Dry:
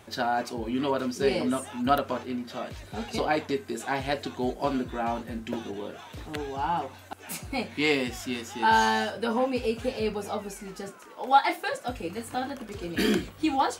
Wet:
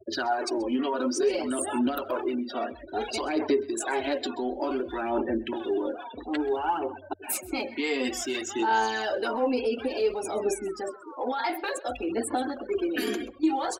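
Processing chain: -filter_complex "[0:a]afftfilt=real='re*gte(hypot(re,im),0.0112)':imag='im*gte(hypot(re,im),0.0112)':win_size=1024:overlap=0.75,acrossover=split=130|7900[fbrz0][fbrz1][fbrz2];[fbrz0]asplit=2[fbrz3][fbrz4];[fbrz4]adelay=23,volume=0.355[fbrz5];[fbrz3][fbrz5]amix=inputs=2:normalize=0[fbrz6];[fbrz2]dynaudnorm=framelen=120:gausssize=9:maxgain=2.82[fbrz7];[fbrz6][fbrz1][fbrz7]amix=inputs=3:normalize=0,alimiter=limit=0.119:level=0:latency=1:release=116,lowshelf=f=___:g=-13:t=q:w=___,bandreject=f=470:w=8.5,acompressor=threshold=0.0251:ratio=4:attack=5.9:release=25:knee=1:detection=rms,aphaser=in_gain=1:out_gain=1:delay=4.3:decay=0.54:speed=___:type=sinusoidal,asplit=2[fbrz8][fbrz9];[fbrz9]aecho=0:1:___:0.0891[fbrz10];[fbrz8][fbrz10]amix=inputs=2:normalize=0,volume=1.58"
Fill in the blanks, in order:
230, 3, 0.57, 130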